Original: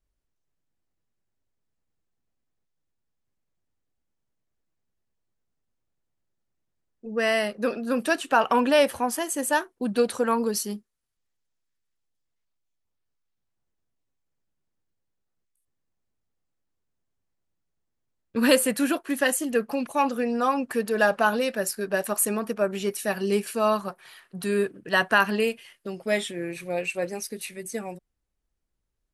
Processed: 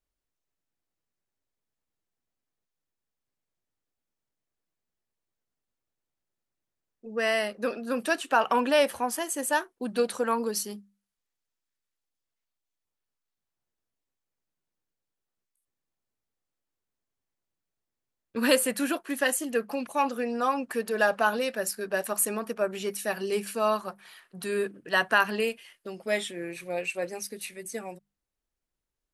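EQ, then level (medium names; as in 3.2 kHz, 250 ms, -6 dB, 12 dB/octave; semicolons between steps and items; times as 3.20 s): bass shelf 230 Hz -7 dB; hum notches 50/100/150/200 Hz; -2.0 dB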